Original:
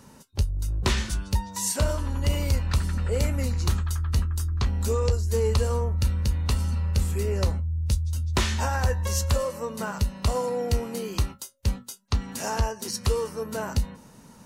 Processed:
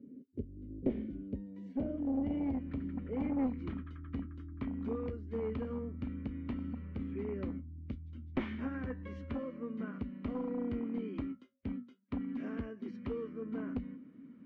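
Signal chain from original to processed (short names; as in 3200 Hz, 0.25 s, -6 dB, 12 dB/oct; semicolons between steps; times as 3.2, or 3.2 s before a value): vowel filter i; one-sided clip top -40 dBFS; low-pass sweep 460 Hz -> 1100 Hz, 0.53–3.7; gain +7 dB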